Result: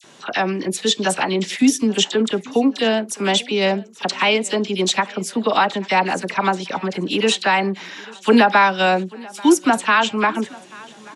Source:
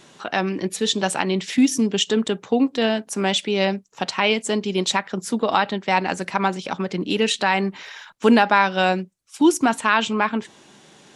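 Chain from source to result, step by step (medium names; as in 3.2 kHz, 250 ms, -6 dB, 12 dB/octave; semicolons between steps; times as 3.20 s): high-pass 160 Hz 6 dB/octave; phase dispersion lows, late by 40 ms, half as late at 1.8 kHz; on a send: feedback delay 838 ms, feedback 48%, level -23 dB; on the sum: trim +3 dB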